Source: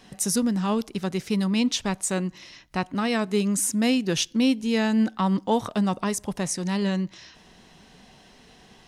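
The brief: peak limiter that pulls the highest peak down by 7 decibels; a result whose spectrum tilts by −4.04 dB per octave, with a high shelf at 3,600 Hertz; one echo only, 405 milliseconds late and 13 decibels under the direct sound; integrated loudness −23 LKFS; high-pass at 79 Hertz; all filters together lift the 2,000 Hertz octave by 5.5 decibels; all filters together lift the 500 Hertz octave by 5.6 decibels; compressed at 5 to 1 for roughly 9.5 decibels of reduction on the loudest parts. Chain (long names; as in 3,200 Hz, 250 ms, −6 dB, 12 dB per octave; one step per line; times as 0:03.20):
high-pass filter 79 Hz
parametric band 500 Hz +6.5 dB
parametric band 2,000 Hz +5 dB
high-shelf EQ 3,600 Hz +5.5 dB
downward compressor 5 to 1, threshold −25 dBFS
brickwall limiter −20 dBFS
single-tap delay 405 ms −13 dB
level +7 dB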